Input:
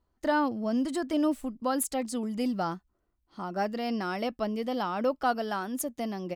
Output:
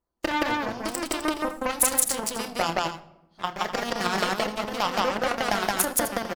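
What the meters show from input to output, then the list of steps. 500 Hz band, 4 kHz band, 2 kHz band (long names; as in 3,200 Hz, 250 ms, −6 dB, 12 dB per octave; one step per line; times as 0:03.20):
+2.5 dB, +11.5 dB, +8.5 dB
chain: bass and treble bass −6 dB, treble +1 dB
auto-filter notch saw down 3.2 Hz 730–4,000 Hz
in parallel at 0 dB: compressor whose output falls as the input rises −34 dBFS, ratio −0.5
on the sum: harmonic and percussive parts rebalanced percussive +4 dB
harmonic generator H 3 −13 dB, 7 −25 dB, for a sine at −10.5 dBFS
on a send: loudspeakers that aren't time-aligned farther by 10 metres −9 dB, 59 metres 0 dB, 88 metres −11 dB
on the sum: rectangular room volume 3,300 cubic metres, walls furnished, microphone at 0.83 metres
level +8 dB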